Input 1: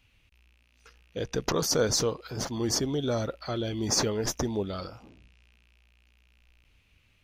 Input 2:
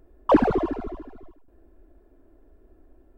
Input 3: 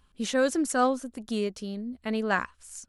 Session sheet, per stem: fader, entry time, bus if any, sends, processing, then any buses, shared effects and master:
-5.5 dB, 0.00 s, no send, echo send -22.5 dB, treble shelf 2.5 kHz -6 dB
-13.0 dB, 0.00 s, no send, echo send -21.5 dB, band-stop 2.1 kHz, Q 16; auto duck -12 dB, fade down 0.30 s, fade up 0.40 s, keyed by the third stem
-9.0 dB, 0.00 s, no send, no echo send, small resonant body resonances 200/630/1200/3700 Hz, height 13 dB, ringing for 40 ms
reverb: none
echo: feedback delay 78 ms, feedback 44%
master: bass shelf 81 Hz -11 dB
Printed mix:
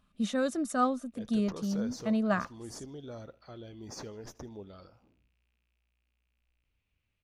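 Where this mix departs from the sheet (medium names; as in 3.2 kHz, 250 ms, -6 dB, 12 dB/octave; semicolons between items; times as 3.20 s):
stem 1 -5.5 dB -> -15.0 dB; stem 2: muted; master: missing bass shelf 81 Hz -11 dB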